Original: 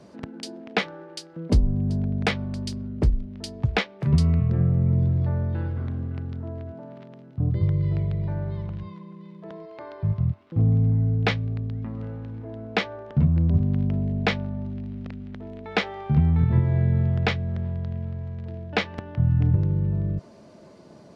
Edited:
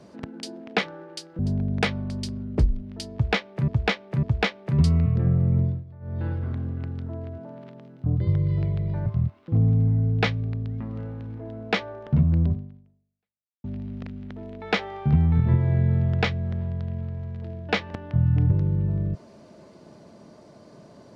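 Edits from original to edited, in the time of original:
0:01.39–0:01.83: remove
0:03.57–0:04.12: repeat, 3 plays
0:04.93–0:05.59: duck −20 dB, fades 0.25 s
0:08.40–0:10.10: remove
0:13.50–0:14.68: fade out exponential

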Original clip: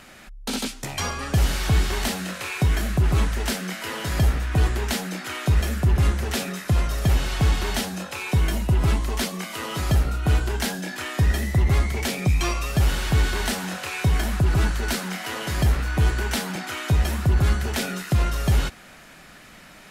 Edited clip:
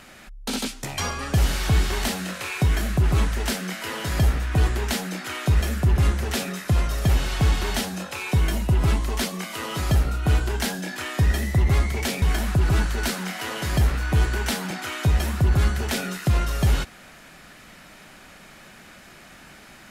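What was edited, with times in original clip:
0:12.22–0:14.07: remove

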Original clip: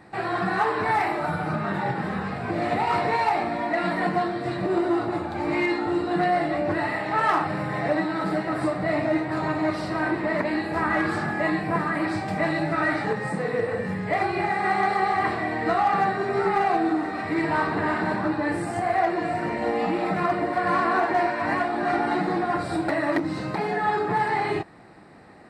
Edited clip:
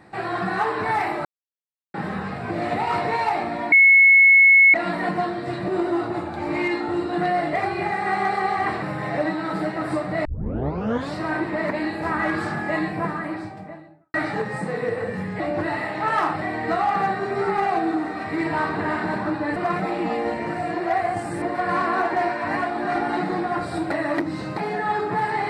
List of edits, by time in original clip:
0:01.25–0:01.94: silence
0:03.72: insert tone 2,190 Hz −9 dBFS 1.02 s
0:06.51–0:07.53: swap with 0:14.11–0:15.40
0:08.96: tape start 0.90 s
0:11.50–0:12.85: fade out and dull
0:18.54–0:20.40: reverse

